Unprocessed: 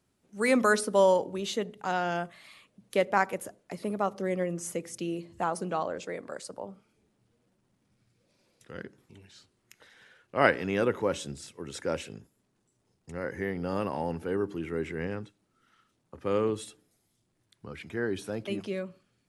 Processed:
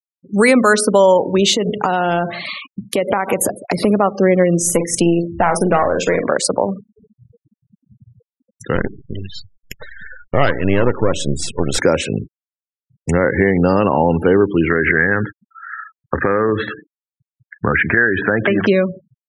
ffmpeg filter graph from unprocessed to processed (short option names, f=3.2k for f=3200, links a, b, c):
-filter_complex "[0:a]asettb=1/sr,asplit=3[a][b][c];[a]atrim=end=1.554[d];[b]atrim=start=1.55:end=3.85,asetpts=PTS-STARTPTS,afade=t=in:d=0.004:c=qsin,afade=t=out:st=2.296:d=0.004:c=qsin,equalizer=f=1.7k:t=o:w=0.54:g=-3.5,acompressor=threshold=-37dB:ratio=6:attack=3.2:release=140:knee=1:detection=peak,aecho=1:1:154:0.133,atrim=end_sample=101430[e];[c]atrim=start=3.846[f];[d][e]acrossfade=d=0.004:c1=hsin:c2=qsin[g];[g][f]acrossfade=d=0.004:c1=qsin:c2=hsin,asettb=1/sr,asplit=3[h][i][j];[h]atrim=end=4.624[k];[i]atrim=start=4.62:end=6.25,asetpts=PTS-STARTPTS,afade=t=in:d=0.004:c=qsin,afade=t=out:st=1.626:d=0.004:c=qsin,aeval=exprs='(tanh(11.2*val(0)+0.65)-tanh(0.65))/11.2':c=same,asplit=2[l][m];[m]adelay=47,volume=-8.5dB[n];[l][n]amix=inputs=2:normalize=0,atrim=end_sample=71883[o];[j]atrim=start=6.246[p];[k][o]acrossfade=d=0.004:c1=hsin:c2=qsin[q];[q][p]acrossfade=d=0.004:c1=qsin:c2=hsin,asettb=1/sr,asplit=3[r][s][t];[r]atrim=end=8.754[u];[s]atrim=start=8.75:end=11.78,asetpts=PTS-STARTPTS,afade=t=in:d=0.004:c=qsin,afade=t=out:st=3.026:d=0.004:c=qsin,aeval=exprs='if(lt(val(0),0),0.251*val(0),val(0))':c=same,lowshelf=f=79:g=6.5[v];[t]atrim=start=11.776[w];[u][v]acrossfade=d=0.004:c1=hsin:c2=qsin[x];[x][w]acrossfade=d=0.004:c1=qsin:c2=hsin,asettb=1/sr,asplit=3[y][z][aa];[y]atrim=end=14.704[ab];[z]atrim=start=14.7:end=18.67,asetpts=PTS-STARTPTS,afade=t=in:d=0.004:c=qsin,afade=t=out:st=3.966:d=0.004:c=qsin,acompressor=threshold=-35dB:ratio=6:attack=3.2:release=140:knee=1:detection=peak,lowpass=f=1.7k:t=q:w=7.1[ac];[aa]atrim=start=18.666[ad];[ab][ac]acrossfade=d=0.004:c1=hsin:c2=qsin[ae];[ae][ad]acrossfade=d=0.004:c1=qsin:c2=hsin,acompressor=threshold=-40dB:ratio=3,afftfilt=real='re*gte(hypot(re,im),0.00251)':imag='im*gte(hypot(re,im),0.00251)':win_size=1024:overlap=0.75,alimiter=level_in=28.5dB:limit=-1dB:release=50:level=0:latency=1,volume=-1dB"